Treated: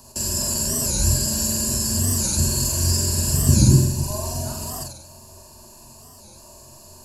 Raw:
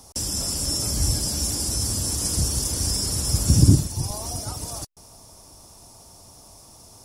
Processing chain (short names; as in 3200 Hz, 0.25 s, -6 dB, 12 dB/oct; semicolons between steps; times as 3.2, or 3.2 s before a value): ripple EQ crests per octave 1.4, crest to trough 14 dB; flutter echo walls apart 7.8 m, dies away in 0.72 s; record warp 45 rpm, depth 160 cents; gain -1 dB